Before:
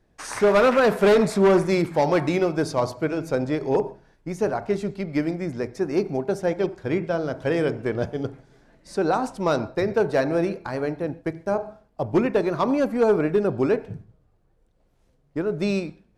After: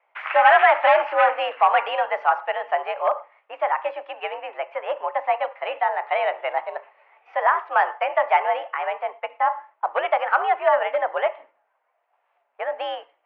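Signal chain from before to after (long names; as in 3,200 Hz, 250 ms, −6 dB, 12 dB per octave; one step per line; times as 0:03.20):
single-sideband voice off tune +62 Hz 500–2,200 Hz
speed change +22%
level +5.5 dB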